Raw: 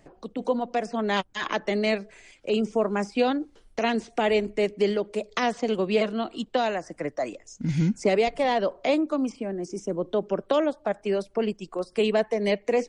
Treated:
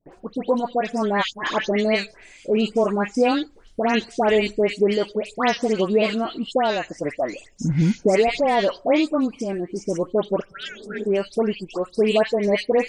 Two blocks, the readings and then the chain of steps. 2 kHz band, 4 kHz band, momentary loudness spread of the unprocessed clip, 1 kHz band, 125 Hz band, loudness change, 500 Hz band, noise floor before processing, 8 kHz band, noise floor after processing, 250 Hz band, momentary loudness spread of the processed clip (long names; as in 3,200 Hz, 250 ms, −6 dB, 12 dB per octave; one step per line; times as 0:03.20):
+4.5 dB, +4.5 dB, 8 LU, +4.5 dB, +4.5 dB, +4.5 dB, +4.0 dB, −59 dBFS, +4.5 dB, −51 dBFS, +4.5 dB, 9 LU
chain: all-pass dispersion highs, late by 130 ms, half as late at 2,000 Hz
healed spectral selection 0:10.51–0:11.01, 210–1,300 Hz both
noise gate with hold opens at −50 dBFS
level +4.5 dB